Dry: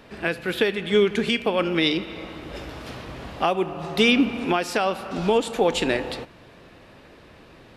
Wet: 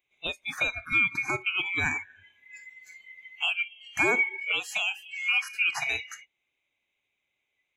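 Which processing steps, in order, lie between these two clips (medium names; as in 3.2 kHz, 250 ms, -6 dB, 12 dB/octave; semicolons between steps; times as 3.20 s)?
split-band scrambler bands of 2 kHz; spectral noise reduction 26 dB; trim -6 dB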